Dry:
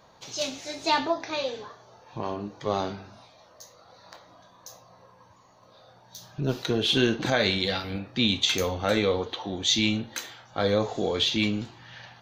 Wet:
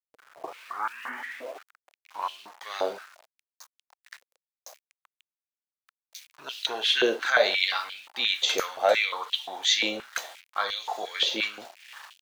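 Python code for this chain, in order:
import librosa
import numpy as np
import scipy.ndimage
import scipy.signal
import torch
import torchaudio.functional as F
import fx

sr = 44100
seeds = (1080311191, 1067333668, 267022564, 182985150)

y = fx.tape_start_head(x, sr, length_s=2.39)
y = np.where(np.abs(y) >= 10.0 ** (-43.5 / 20.0), y, 0.0)
y = fx.filter_held_highpass(y, sr, hz=5.7, low_hz=510.0, high_hz=3000.0)
y = y * 10.0 ** (-1.5 / 20.0)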